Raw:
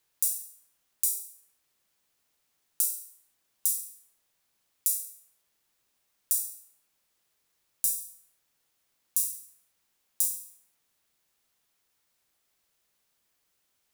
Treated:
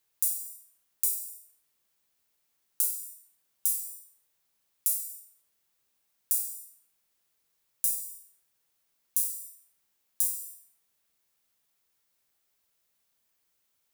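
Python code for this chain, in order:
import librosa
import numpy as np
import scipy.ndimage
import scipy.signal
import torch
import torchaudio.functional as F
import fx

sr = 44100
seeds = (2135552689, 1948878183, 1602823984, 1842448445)

y = fx.high_shelf(x, sr, hz=12000.0, db=6.0)
y = fx.rev_gated(y, sr, seeds[0], gate_ms=320, shape='falling', drr_db=8.0)
y = y * librosa.db_to_amplitude(-4.0)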